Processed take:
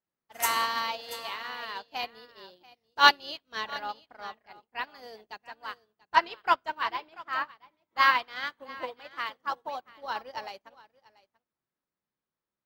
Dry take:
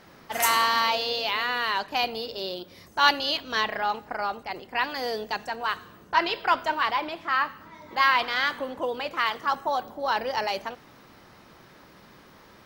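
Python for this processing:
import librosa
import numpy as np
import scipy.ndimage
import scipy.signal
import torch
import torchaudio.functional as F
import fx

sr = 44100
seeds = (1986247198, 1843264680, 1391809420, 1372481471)

y = x + 10.0 ** (-8.5 / 20.0) * np.pad(x, (int(686 * sr / 1000.0), 0))[:len(x)]
y = fx.upward_expand(y, sr, threshold_db=-46.0, expansion=2.5)
y = y * librosa.db_to_amplitude(3.0)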